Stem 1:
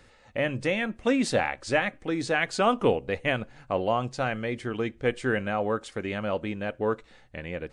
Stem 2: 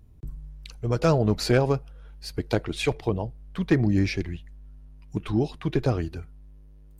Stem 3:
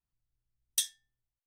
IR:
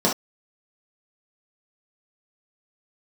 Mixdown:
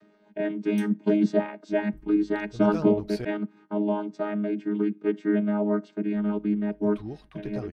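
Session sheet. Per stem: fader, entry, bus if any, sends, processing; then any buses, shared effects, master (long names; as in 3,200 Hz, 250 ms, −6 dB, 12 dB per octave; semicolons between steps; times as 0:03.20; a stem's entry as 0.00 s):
−2.5 dB, 0.00 s, no send, channel vocoder with a chord as carrier bare fifth, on G#3; low-shelf EQ 320 Hz +11.5 dB
−13.5 dB, 1.70 s, muted 0:03.25–0:06.16, no send, no processing
−11.0 dB, 0.00 s, no send, automatic ducking −14 dB, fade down 1.15 s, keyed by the first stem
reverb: not used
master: parametric band 7,100 Hz −3 dB 0.33 octaves; notch filter 7,100 Hz, Q 16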